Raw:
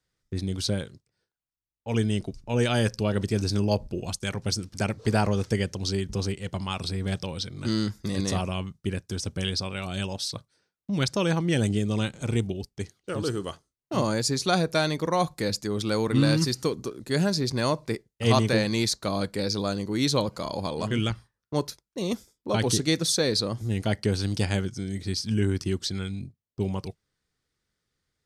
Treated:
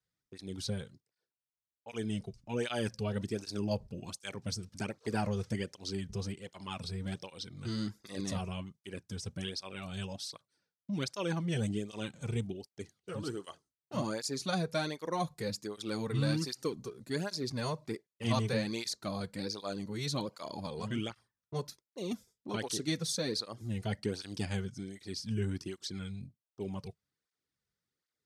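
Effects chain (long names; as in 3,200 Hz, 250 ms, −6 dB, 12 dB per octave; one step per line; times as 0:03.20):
through-zero flanger with one copy inverted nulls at 1.3 Hz, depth 3.8 ms
level −7 dB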